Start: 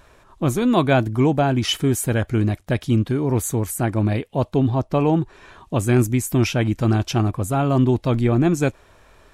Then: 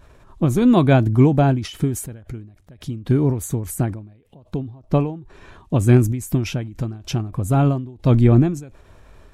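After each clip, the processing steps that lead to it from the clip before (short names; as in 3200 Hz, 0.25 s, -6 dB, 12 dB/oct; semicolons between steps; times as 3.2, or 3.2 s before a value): low shelf 350 Hz +10 dB; ending taper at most 100 dB/s; gain -2 dB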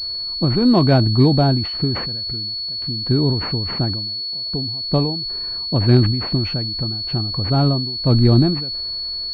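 transient shaper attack -1 dB, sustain +4 dB; pulse-width modulation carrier 4400 Hz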